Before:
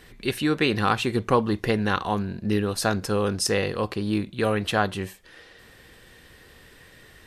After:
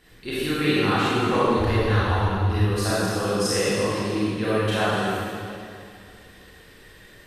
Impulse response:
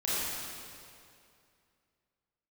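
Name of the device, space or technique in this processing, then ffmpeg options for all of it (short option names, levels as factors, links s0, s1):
stairwell: -filter_complex "[1:a]atrim=start_sample=2205[s0];[0:a][s0]afir=irnorm=-1:irlink=0,asettb=1/sr,asplit=3[s1][s2][s3];[s1]atrim=end=1.584[s4];[s2]atrim=start=1.58:end=2.91,asetpts=PTS-STARTPTS,afade=t=in:d=0.004:c=qsin,afade=t=out:st=1.326:d=0.004:c=qsin,lowshelf=f=110:t=q:w=3:g=11.5[s5];[s3]atrim=start=2.906[s6];[s4][s5]acrossfade=d=0.004:c1=hsin:c2=qsin[s7];[s7][s6]acrossfade=d=0.004:c1=qsin:c2=hsin,volume=0.447"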